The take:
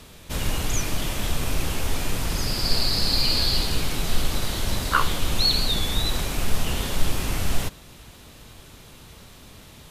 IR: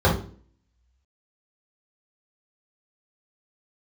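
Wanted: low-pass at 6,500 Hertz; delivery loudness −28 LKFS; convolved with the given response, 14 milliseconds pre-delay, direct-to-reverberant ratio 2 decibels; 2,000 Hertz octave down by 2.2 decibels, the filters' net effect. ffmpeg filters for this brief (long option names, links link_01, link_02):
-filter_complex "[0:a]lowpass=6500,equalizer=frequency=2000:width_type=o:gain=-3,asplit=2[link_01][link_02];[1:a]atrim=start_sample=2205,adelay=14[link_03];[link_02][link_03]afir=irnorm=-1:irlink=0,volume=-21.5dB[link_04];[link_01][link_04]amix=inputs=2:normalize=0,volume=-7.5dB"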